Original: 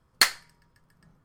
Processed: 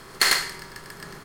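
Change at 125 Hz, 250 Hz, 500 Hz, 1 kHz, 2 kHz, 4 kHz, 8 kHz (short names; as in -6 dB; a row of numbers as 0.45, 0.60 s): +10.0, +8.0, +7.5, +3.5, +3.5, +2.5, +3.0 dB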